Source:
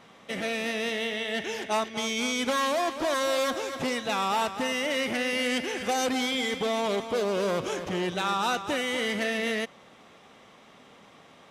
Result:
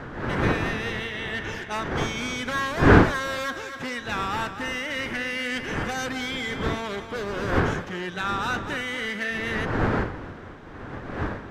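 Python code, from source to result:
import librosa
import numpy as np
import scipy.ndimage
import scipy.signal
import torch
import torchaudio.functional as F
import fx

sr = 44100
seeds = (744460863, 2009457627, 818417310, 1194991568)

y = fx.dmg_wind(x, sr, seeds[0], corner_hz=570.0, level_db=-25.0)
y = fx.graphic_eq_15(y, sr, hz=(100, 630, 1600, 10000), db=(5, -5, 10, -5))
y = y * librosa.db_to_amplitude(-3.5)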